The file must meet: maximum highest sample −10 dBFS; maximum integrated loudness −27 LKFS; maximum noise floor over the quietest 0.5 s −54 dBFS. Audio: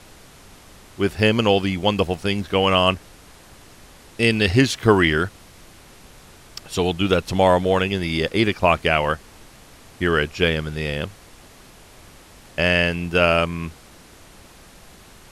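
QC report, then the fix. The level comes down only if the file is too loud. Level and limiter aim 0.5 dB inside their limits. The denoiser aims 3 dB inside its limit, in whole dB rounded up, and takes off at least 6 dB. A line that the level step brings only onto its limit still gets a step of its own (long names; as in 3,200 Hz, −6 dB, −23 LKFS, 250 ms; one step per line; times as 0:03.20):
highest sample −2.5 dBFS: out of spec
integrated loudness −20.0 LKFS: out of spec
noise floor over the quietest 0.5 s −46 dBFS: out of spec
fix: broadband denoise 6 dB, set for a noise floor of −46 dBFS
level −7.5 dB
brickwall limiter −10.5 dBFS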